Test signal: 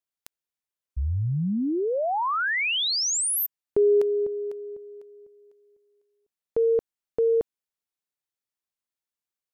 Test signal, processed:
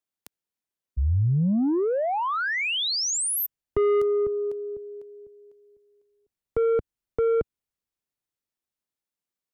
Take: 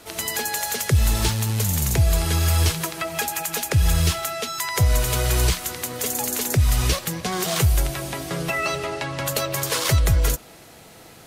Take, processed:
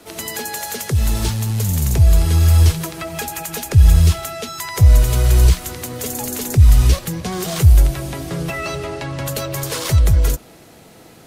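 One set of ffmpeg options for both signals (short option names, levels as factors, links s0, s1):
-filter_complex "[0:a]equalizer=f=260:t=o:w=2.3:g=6,acrossover=split=100|3700[s0][s1][s2];[s0]dynaudnorm=f=320:g=11:m=5.62[s3];[s1]asoftclip=type=tanh:threshold=0.126[s4];[s3][s4][s2]amix=inputs=3:normalize=0,volume=0.891"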